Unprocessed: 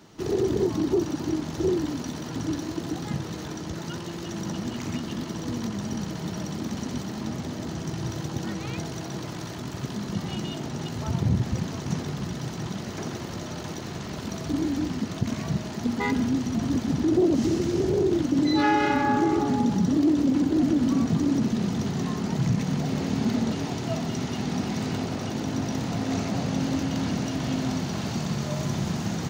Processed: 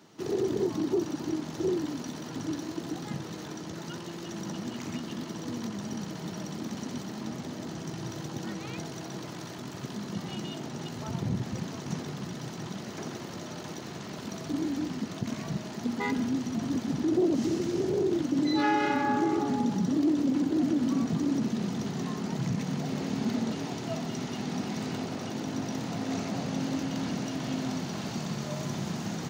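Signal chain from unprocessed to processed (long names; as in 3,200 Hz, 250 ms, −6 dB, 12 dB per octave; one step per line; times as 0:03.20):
high-pass filter 140 Hz 12 dB per octave
level −4 dB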